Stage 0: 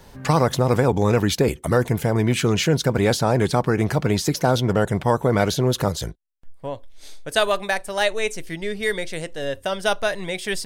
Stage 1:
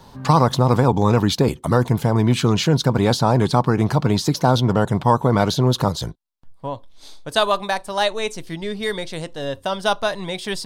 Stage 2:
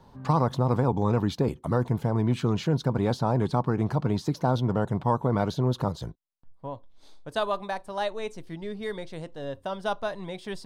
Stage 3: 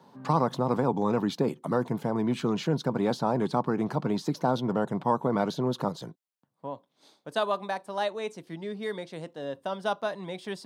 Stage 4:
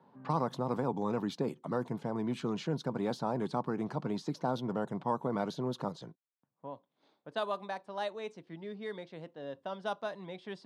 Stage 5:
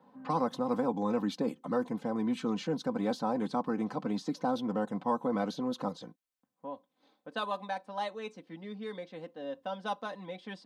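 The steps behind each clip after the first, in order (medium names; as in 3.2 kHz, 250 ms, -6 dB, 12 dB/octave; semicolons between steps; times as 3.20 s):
graphic EQ 125/250/1000/2000/4000 Hz +7/+6/+11/-4/+8 dB; trim -4 dB
treble shelf 2.2 kHz -10.5 dB; trim -7.5 dB
high-pass 160 Hz 24 dB/octave
level-controlled noise filter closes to 2.3 kHz, open at -22.5 dBFS; trim -7 dB
comb 3.9 ms, depth 74%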